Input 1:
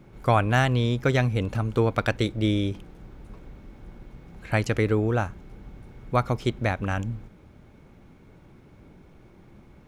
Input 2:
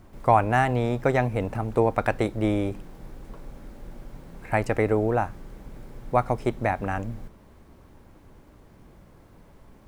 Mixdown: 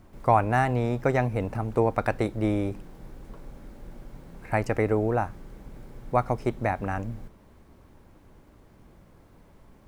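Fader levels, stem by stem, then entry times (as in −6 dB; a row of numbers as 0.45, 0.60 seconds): −18.0, −2.5 decibels; 0.00, 0.00 seconds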